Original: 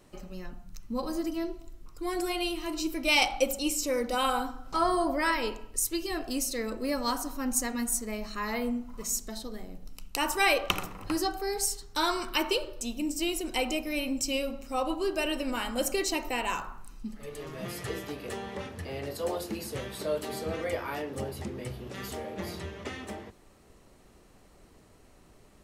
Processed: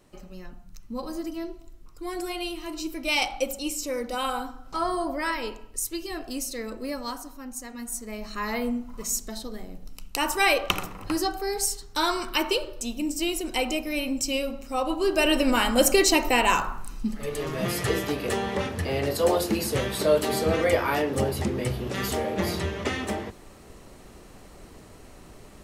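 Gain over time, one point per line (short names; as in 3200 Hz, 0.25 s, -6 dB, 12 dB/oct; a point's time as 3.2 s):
6.83 s -1 dB
7.57 s -9 dB
8.4 s +3 dB
14.86 s +3 dB
15.36 s +10 dB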